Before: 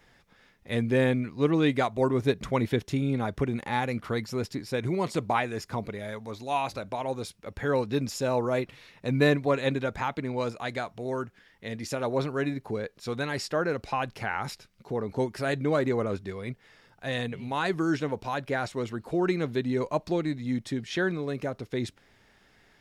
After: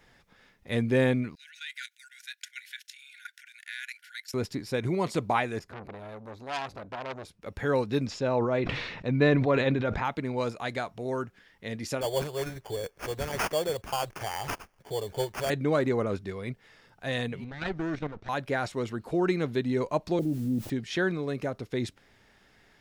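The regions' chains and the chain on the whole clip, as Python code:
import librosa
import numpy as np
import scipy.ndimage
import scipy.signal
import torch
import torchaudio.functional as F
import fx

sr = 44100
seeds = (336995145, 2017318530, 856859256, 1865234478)

y = fx.chain(x, sr, fx.brickwall_highpass(low_hz=1400.0),
    fx.high_shelf(hz=4800.0, db=6.0),
    fx.level_steps(step_db=13), at=(1.35, 4.34))
y = fx.chain(y, sr, fx.high_shelf(hz=2200.0, db=-11.5),
    fx.transformer_sat(knee_hz=2800.0), at=(5.59, 7.42))
y = fx.chain(y, sr, fx.air_absorb(metres=150.0),
    fx.sustainer(db_per_s=42.0), at=(8.07, 10.05))
y = fx.chain(y, sr, fx.high_shelf(hz=2100.0, db=10.0),
    fx.fixed_phaser(hz=590.0, stages=4),
    fx.sample_hold(seeds[0], rate_hz=3900.0, jitter_pct=0), at=(12.01, 15.5))
y = fx.chain(y, sr, fx.lower_of_two(delay_ms=0.51),
    fx.level_steps(step_db=10),
    fx.air_absorb(metres=130.0), at=(17.44, 18.29))
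y = fx.chain(y, sr, fx.steep_lowpass(hz=810.0, slope=48),
    fx.quant_dither(seeds[1], bits=10, dither='triangular'),
    fx.env_flatten(amount_pct=50), at=(20.19, 20.7))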